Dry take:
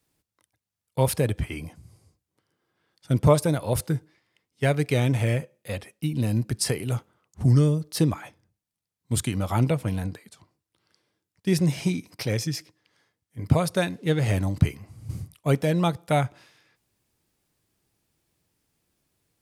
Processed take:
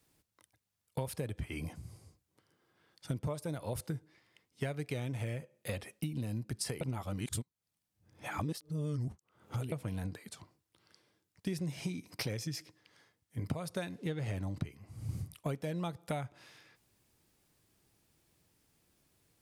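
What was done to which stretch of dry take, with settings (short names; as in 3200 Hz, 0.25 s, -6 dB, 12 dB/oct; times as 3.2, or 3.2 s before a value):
6.81–9.72 reverse
14.07–14.72 high shelf 6800 Hz -6.5 dB
whole clip: compressor 8:1, threshold -36 dBFS; gain +1.5 dB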